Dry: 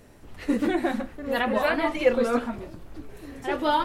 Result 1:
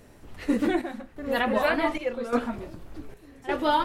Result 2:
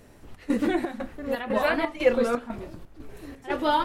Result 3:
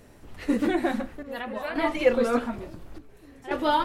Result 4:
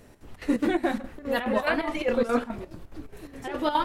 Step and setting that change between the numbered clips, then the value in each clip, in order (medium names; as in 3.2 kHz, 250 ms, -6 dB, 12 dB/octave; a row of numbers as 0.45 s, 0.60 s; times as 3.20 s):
square tremolo, rate: 0.86 Hz, 2 Hz, 0.57 Hz, 4.8 Hz